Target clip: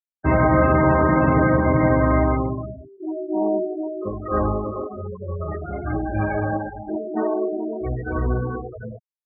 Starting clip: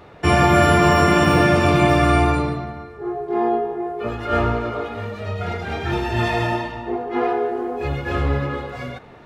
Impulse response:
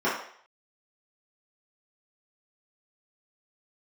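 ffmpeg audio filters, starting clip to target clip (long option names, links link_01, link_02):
-af "lowpass=2000,asetrate=39289,aresample=44100,atempo=1.12246,afftfilt=real='re*gte(hypot(re,im),0.0891)':imag='im*gte(hypot(re,im),0.0891)':win_size=1024:overlap=0.75,volume=-1.5dB"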